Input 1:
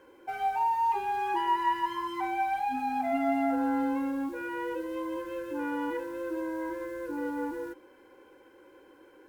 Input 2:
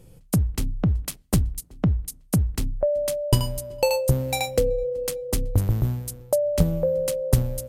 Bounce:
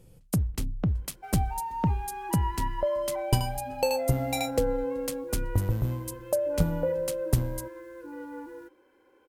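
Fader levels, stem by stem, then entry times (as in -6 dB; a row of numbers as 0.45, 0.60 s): -7.0, -5.0 dB; 0.95, 0.00 s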